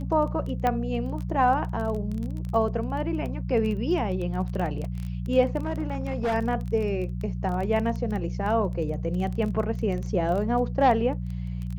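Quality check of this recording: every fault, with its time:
crackle 18 per s -30 dBFS
hum 60 Hz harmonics 3 -31 dBFS
0.67 s: pop -13 dBFS
5.62–6.35 s: clipped -22.5 dBFS

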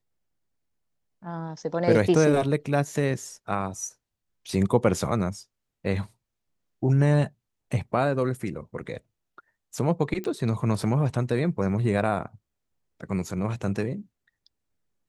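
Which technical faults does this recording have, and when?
10.24 s: pop -21 dBFS

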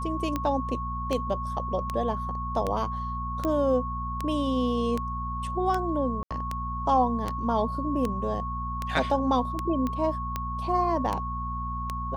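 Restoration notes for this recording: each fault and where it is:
hum 60 Hz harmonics 4 -34 dBFS
tick 78 rpm -15 dBFS
whine 1.1 kHz -32 dBFS
3.45 s: pop -18 dBFS
6.23–6.31 s: dropout 76 ms
9.87 s: pop -18 dBFS

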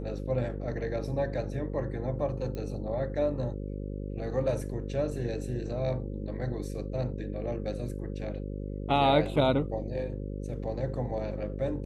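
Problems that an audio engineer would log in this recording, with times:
buzz 50 Hz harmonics 11 -36 dBFS
2.55 s: pop -25 dBFS

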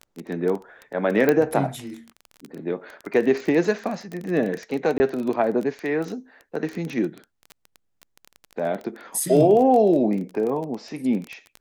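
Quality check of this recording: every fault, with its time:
crackle 19 per s -26 dBFS
1.29 s: pop -7 dBFS
4.98–5.00 s: dropout 20 ms
9.20 s: dropout 2.8 ms

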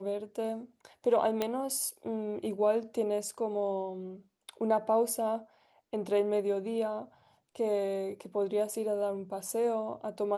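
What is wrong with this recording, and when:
1.42 s: pop -16 dBFS

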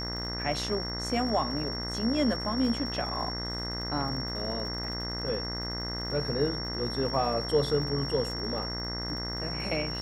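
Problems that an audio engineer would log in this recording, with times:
buzz 60 Hz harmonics 35 -37 dBFS
crackle 110 per s -40 dBFS
whine 5.5 kHz -35 dBFS

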